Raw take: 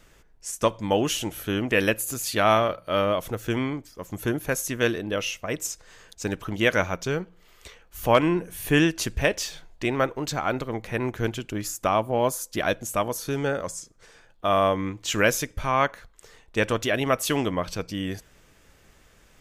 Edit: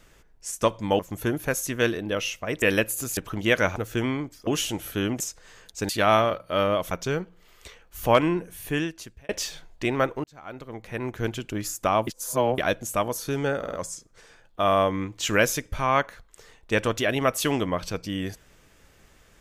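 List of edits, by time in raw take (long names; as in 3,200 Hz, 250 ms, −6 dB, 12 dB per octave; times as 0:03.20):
0:00.99–0:01.72: swap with 0:04.00–0:05.63
0:02.27–0:03.29: swap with 0:06.32–0:06.91
0:08.13–0:09.29: fade out
0:10.24–0:11.44: fade in
0:12.07–0:12.58: reverse
0:13.58: stutter 0.05 s, 4 plays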